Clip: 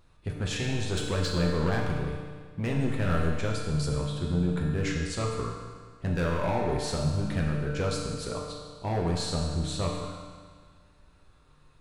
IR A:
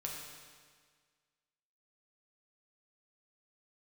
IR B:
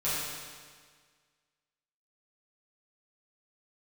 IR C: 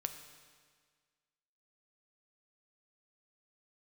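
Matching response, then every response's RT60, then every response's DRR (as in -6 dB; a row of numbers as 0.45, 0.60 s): A; 1.7, 1.7, 1.7 s; -2.0, -11.5, 7.0 dB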